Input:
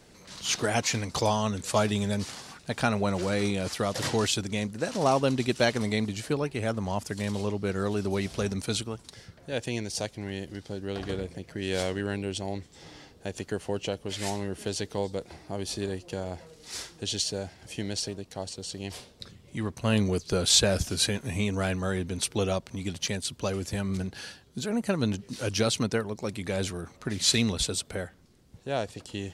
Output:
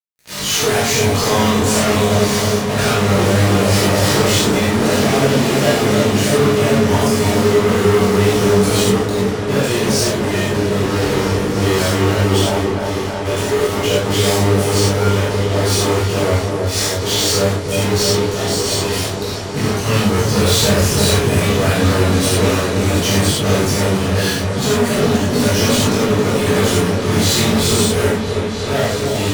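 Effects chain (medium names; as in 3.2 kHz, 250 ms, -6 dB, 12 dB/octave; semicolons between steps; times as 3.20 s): peaking EQ 420 Hz +6.5 dB 0.24 oct; fuzz box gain 46 dB, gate -43 dBFS; chorus 0.35 Hz, delay 20 ms, depth 2.6 ms; delay with an opening low-pass 320 ms, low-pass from 750 Hz, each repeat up 1 oct, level -3 dB; gated-style reverb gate 130 ms flat, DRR -7 dB; trim -6 dB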